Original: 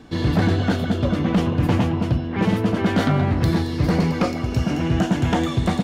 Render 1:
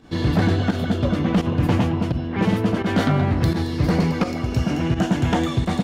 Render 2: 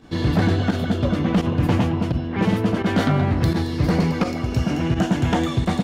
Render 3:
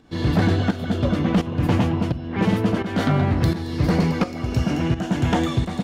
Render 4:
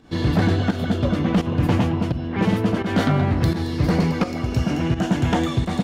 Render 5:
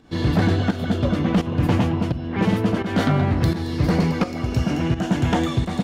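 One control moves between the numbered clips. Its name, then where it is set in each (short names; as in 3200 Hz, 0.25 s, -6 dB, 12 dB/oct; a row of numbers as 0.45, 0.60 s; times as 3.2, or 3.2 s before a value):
pump, release: 97, 62, 402, 167, 251 ms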